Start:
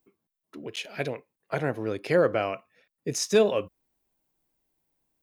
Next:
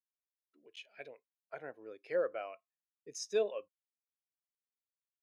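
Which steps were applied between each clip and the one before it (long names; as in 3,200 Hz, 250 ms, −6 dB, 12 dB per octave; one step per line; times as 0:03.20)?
noise gate −55 dBFS, range −18 dB
high-pass filter 810 Hz 6 dB per octave
every bin expanded away from the loudest bin 1.5 to 1
level −7.5 dB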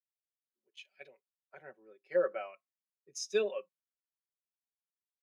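comb filter 5.3 ms, depth 77%
dynamic equaliser 2,400 Hz, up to +4 dB, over −53 dBFS, Q 0.9
multiband upward and downward expander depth 70%
level −6 dB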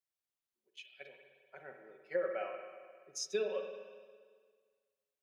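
downward compressor, threshold −31 dBFS, peak gain reduction 7.5 dB
spring reverb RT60 1.7 s, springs 43/59 ms, chirp 60 ms, DRR 4.5 dB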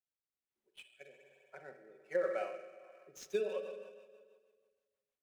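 running median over 9 samples
rotating-speaker cabinet horn 1.2 Hz, later 6.3 Hz, at 0:02.75
level +2 dB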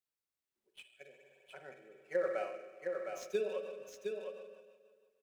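single-tap delay 712 ms −5 dB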